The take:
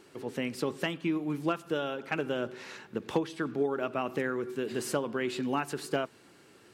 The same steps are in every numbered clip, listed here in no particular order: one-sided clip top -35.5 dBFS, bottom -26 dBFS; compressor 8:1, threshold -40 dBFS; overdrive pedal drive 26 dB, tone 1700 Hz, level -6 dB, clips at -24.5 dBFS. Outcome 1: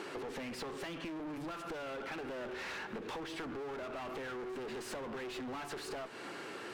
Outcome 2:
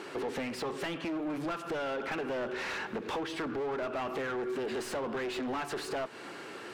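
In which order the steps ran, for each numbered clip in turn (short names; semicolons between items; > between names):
overdrive pedal > one-sided clip > compressor; one-sided clip > compressor > overdrive pedal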